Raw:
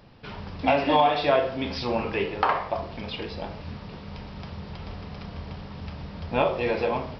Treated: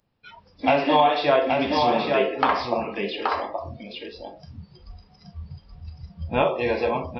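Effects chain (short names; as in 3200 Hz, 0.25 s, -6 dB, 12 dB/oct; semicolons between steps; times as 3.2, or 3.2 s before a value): spectral noise reduction 23 dB; on a send: echo 0.826 s -4 dB; on the sum: gain +2 dB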